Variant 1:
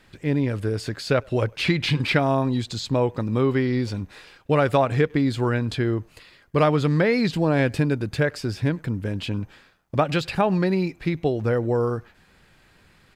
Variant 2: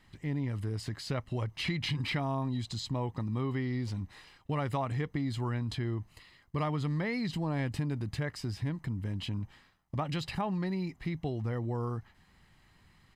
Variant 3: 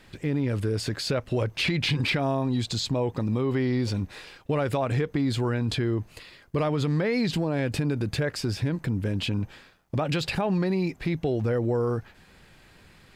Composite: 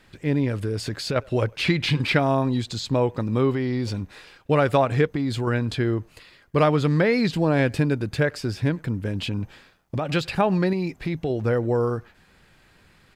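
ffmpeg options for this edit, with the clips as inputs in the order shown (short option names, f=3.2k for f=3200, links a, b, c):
-filter_complex "[2:a]asplit=5[a][b][c][d][e];[0:a]asplit=6[f][g][h][i][j][k];[f]atrim=end=0.612[l];[a]atrim=start=0.608:end=1.162[m];[g]atrim=start=1.158:end=3.522[n];[b]atrim=start=3.518:end=3.942[o];[h]atrim=start=3.938:end=5.072[p];[c]atrim=start=5.068:end=5.472[q];[i]atrim=start=5.468:end=9.112[r];[d]atrim=start=9.108:end=10.072[s];[j]atrim=start=10.068:end=10.732[t];[e]atrim=start=10.728:end=11.302[u];[k]atrim=start=11.298[v];[l][m]acrossfade=d=0.004:c1=hsin:c2=hsin[w];[w][n]acrossfade=d=0.004:c1=hsin:c2=hsin[x];[x][o]acrossfade=d=0.004:c1=hsin:c2=hsin[y];[y][p]acrossfade=d=0.004:c1=hsin:c2=hsin[z];[z][q]acrossfade=d=0.004:c1=hsin:c2=hsin[aa];[aa][r]acrossfade=d=0.004:c1=hsin:c2=hsin[ab];[ab][s]acrossfade=d=0.004:c1=hsin:c2=hsin[ac];[ac][t]acrossfade=d=0.004:c1=hsin:c2=hsin[ad];[ad][u]acrossfade=d=0.004:c1=hsin:c2=hsin[ae];[ae][v]acrossfade=d=0.004:c1=hsin:c2=hsin"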